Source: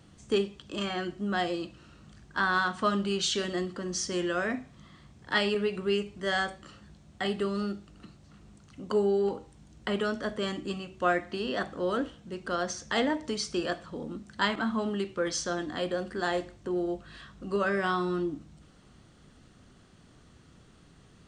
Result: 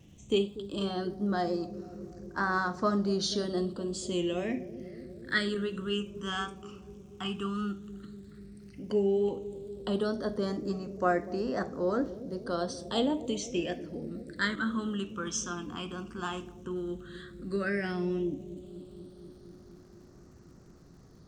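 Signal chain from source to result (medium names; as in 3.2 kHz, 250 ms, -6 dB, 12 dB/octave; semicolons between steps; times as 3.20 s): phase shifter stages 8, 0.11 Hz, lowest notch 550–3100 Hz; crackle 240 per s -58 dBFS; wow and flutter 25 cents; on a send: bucket-brigade echo 241 ms, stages 1024, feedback 79%, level -14 dB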